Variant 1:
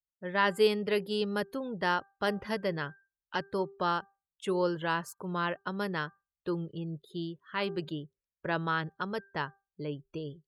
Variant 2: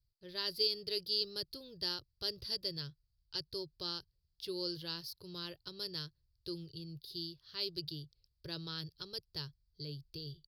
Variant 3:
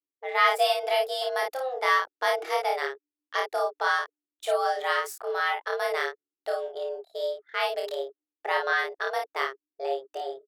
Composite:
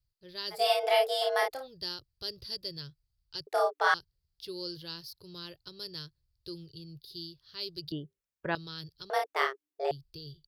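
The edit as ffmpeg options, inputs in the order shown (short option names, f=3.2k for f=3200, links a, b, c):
-filter_complex "[2:a]asplit=3[a][b][c];[1:a]asplit=5[d][e][f][g][h];[d]atrim=end=0.74[i];[a]atrim=start=0.5:end=1.68[j];[e]atrim=start=1.44:end=3.472[k];[b]atrim=start=3.468:end=3.942[l];[f]atrim=start=3.938:end=7.922[m];[0:a]atrim=start=7.918:end=8.552[n];[g]atrim=start=8.548:end=9.102[o];[c]atrim=start=9.098:end=9.912[p];[h]atrim=start=9.908[q];[i][j]acrossfade=d=0.24:c1=tri:c2=tri[r];[r][k]acrossfade=d=0.24:c1=tri:c2=tri[s];[s][l]acrossfade=d=0.004:c1=hsin:c2=hsin[t];[t][m]acrossfade=d=0.004:c1=hsin:c2=hsin[u];[u][n]acrossfade=d=0.004:c1=hsin:c2=hsin[v];[v][o]acrossfade=d=0.004:c1=hsin:c2=hsin[w];[w][p]acrossfade=d=0.004:c1=hsin:c2=hsin[x];[x][q]acrossfade=d=0.004:c1=hsin:c2=hsin"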